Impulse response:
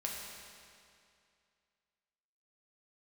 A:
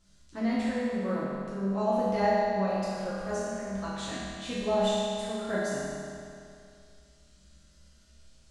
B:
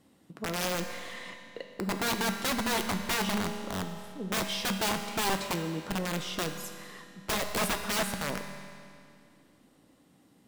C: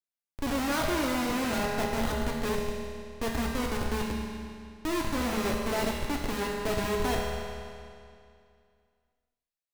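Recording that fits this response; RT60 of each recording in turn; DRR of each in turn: C; 2.4, 2.4, 2.4 s; -11.5, 5.0, -2.5 dB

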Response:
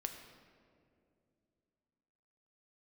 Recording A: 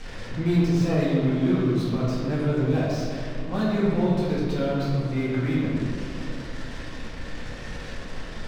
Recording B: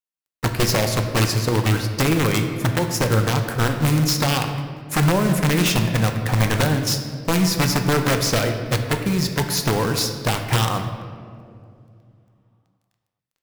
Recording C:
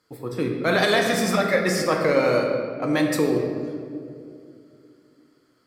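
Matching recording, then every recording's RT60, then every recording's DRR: B; 2.5, 2.5, 2.5 s; -8.0, 4.5, 0.5 dB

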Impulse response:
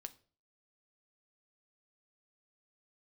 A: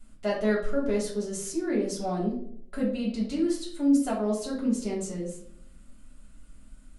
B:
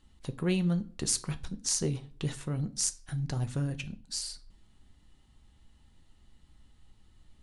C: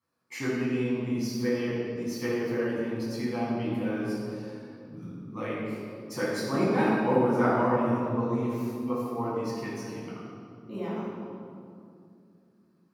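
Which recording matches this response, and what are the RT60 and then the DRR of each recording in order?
B; 0.65, 0.40, 2.5 s; -5.0, 9.0, -8.5 dB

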